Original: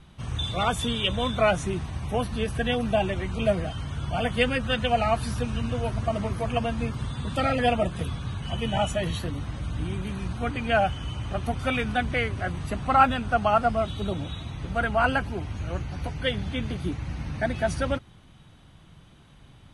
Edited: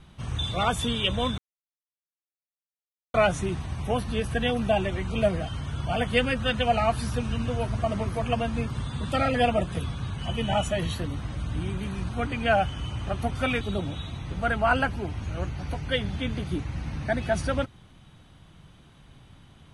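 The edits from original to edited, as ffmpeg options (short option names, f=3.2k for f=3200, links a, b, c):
-filter_complex "[0:a]asplit=3[a][b][c];[a]atrim=end=1.38,asetpts=PTS-STARTPTS,afade=t=out:st=1.376:d=0.004:c=hsin,apad=pad_dur=1.76[d];[b]atrim=start=1.38:end=11.852,asetpts=PTS-STARTPTS,afade=t=in:d=0.004:c=hsin[e];[c]atrim=start=13.938[f];[d][e]concat=n=2:v=0:a=1[g];[g][f]acrossfade=d=0.004:c1=hsin:c2=hsin"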